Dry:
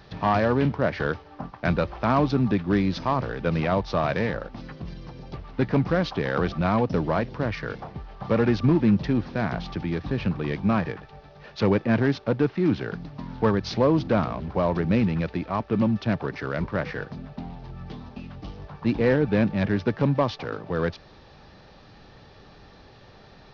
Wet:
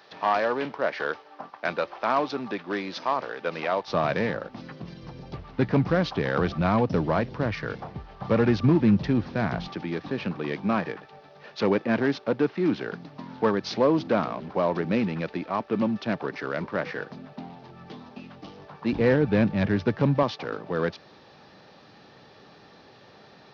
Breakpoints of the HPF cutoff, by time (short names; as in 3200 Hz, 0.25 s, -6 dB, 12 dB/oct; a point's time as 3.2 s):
460 Hz
from 3.88 s 140 Hz
from 5.03 s 61 Hz
from 9.68 s 220 Hz
from 18.93 s 61 Hz
from 20.23 s 170 Hz